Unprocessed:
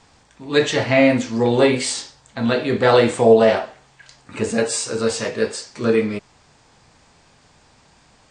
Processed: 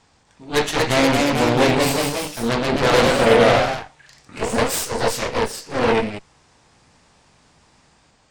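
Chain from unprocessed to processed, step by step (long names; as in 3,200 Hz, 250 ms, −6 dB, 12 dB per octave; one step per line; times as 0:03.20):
harmonic generator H 8 −12 dB, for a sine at −2 dBFS
delay with pitch and tempo change per echo 268 ms, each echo +1 semitone, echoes 3
level −4.5 dB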